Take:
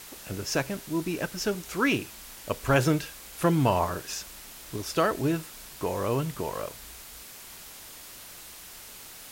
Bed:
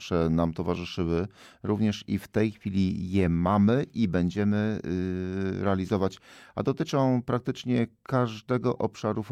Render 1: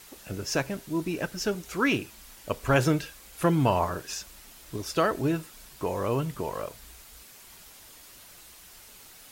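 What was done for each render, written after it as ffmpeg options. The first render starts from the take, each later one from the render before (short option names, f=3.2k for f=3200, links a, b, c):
-af "afftdn=nr=6:nf=-46"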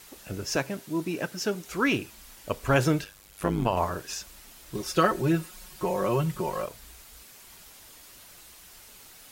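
-filter_complex "[0:a]asettb=1/sr,asplit=3[a][b][c];[a]atrim=end=0.564[d];[b]atrim=start=0.56:end=1.69,asetpts=PTS-STARTPTS,afade=t=in:d=0.004:c=qsin,afade=t=out:st=1.126:d=0.004:c=qsin,highpass=120[e];[c]atrim=start=1.686[f];[d][e]acrossfade=d=0.004:c1=hsin:c2=qsin[g];[g][f]acrossfade=d=0.004:c1=qsin:c2=hsin,asettb=1/sr,asplit=3[h][i][j];[h]atrim=end=3.044[k];[i]atrim=start=3.04:end=3.77,asetpts=PTS-STARTPTS,afade=t=in:d=0.004:c=qsin,afade=t=out:st=0.726:d=0.004:c=qsin,tremolo=f=100:d=0.889[l];[j]atrim=start=3.766[m];[k][l]acrossfade=d=0.004:c1=hsin:c2=qsin[n];[n][m]acrossfade=d=0.004:c1=qsin:c2=hsin,asettb=1/sr,asplit=3[o][p][q];[o]atrim=end=4.744[r];[p]atrim=start=4.74:end=6.66,asetpts=PTS-STARTPTS,afade=t=in:d=0.004:c=qsin,afade=t=out:st=1.916:d=0.004:c=qsin,aecho=1:1:5.5:0.83,atrim=end_sample=84672[s];[q]atrim=start=6.656[t];[r][s]acrossfade=d=0.004:c1=hsin:c2=qsin[u];[u][t]acrossfade=d=0.004:c1=qsin:c2=hsin"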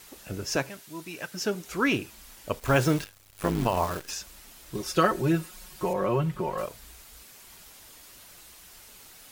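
-filter_complex "[0:a]asettb=1/sr,asplit=3[a][b][c];[a]atrim=end=0.694[d];[b]atrim=start=0.69:end=1.34,asetpts=PTS-STARTPTS,afade=t=in:d=0.004:c=qsin,afade=t=out:st=0.646:d=0.004:c=qsin,equalizer=f=260:w=0.38:g=-12[e];[c]atrim=start=1.336[f];[d][e]acrossfade=d=0.004:c1=hsin:c2=qsin[g];[g][f]acrossfade=d=0.004:c1=qsin:c2=hsin,asettb=1/sr,asplit=3[h][i][j];[h]atrim=end=2.594[k];[i]atrim=start=2.59:end=4.11,asetpts=PTS-STARTPTS,afade=t=in:d=0.004:c=qsin,afade=t=out:st=1.516:d=0.004:c=qsin,acrusher=bits=7:dc=4:mix=0:aa=0.000001[l];[j]atrim=start=4.106[m];[k][l]acrossfade=d=0.004:c1=hsin:c2=qsin[n];[n][m]acrossfade=d=0.004:c1=qsin:c2=hsin,asettb=1/sr,asplit=3[o][p][q];[o]atrim=end=5.934[r];[p]atrim=start=5.93:end=6.58,asetpts=PTS-STARTPTS,afade=t=in:d=0.004:c=qsin,afade=t=out:st=0.646:d=0.004:c=qsin,acrossover=split=3300[s][t];[t]acompressor=threshold=-56dB:ratio=4:attack=1:release=60[u];[s][u]amix=inputs=2:normalize=0[v];[q]atrim=start=6.576[w];[r][v]acrossfade=d=0.004:c1=hsin:c2=qsin[x];[x][w]acrossfade=d=0.004:c1=qsin:c2=hsin"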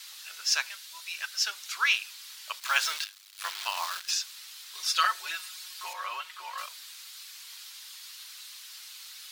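-af "highpass=f=1.1k:w=0.5412,highpass=f=1.1k:w=1.3066,equalizer=f=4.1k:w=1.1:g=11"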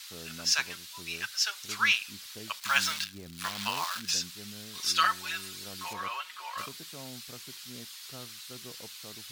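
-filter_complex "[1:a]volume=-22.5dB[a];[0:a][a]amix=inputs=2:normalize=0"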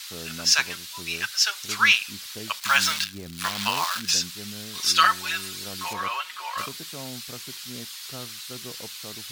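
-af "volume=7dB,alimiter=limit=-3dB:level=0:latency=1"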